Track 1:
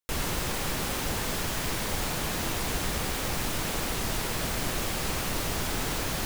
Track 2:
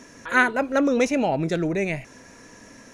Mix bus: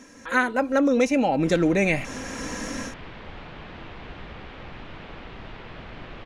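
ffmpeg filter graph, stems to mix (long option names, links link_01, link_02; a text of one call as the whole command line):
ffmpeg -i stem1.wav -i stem2.wav -filter_complex "[0:a]lowpass=frequency=3200:width=0.5412,lowpass=frequency=3200:width=1.3066,adelay=1350,volume=-8.5dB[link_01];[1:a]aecho=1:1:3.8:0.46,dynaudnorm=framelen=190:gausssize=3:maxgain=16.5dB,volume=-3dB[link_02];[link_01][link_02]amix=inputs=2:normalize=0,acompressor=threshold=-20dB:ratio=2" out.wav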